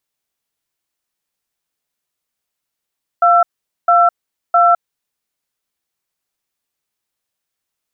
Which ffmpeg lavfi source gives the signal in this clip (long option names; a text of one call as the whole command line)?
ffmpeg -f lavfi -i "aevalsrc='0.316*(sin(2*PI*697*t)+sin(2*PI*1340*t))*clip(min(mod(t,0.66),0.21-mod(t,0.66))/0.005,0,1)':duration=1.57:sample_rate=44100" out.wav